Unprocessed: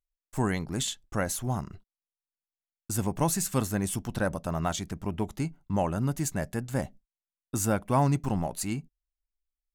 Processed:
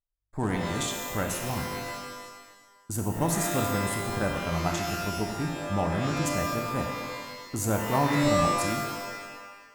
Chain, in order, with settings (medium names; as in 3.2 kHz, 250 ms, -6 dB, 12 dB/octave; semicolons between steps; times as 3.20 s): local Wiener filter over 15 samples; pitch-shifted reverb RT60 1.3 s, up +12 st, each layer -2 dB, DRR 3 dB; trim -1.5 dB